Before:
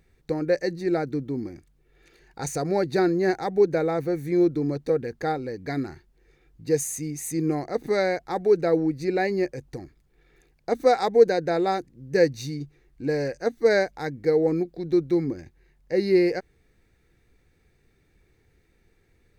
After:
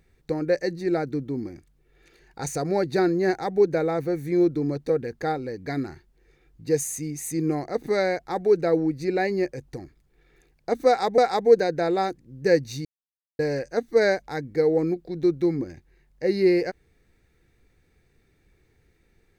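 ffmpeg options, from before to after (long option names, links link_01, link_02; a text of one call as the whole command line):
ffmpeg -i in.wav -filter_complex "[0:a]asplit=4[link_01][link_02][link_03][link_04];[link_01]atrim=end=11.182[link_05];[link_02]atrim=start=10.868:end=12.54,asetpts=PTS-STARTPTS,afade=type=out:start_time=1.668:duration=0.004:curve=hsin[link_06];[link_03]atrim=start=12.54:end=13.08,asetpts=PTS-STARTPTS,volume=0[link_07];[link_04]atrim=start=13.08,asetpts=PTS-STARTPTS,afade=type=in:duration=0.004:curve=hsin[link_08];[link_06][link_07][link_08]concat=n=3:v=0:a=1[link_09];[link_05][link_09]acrossfade=duration=0.004:curve1=hsin:curve2=hsin" out.wav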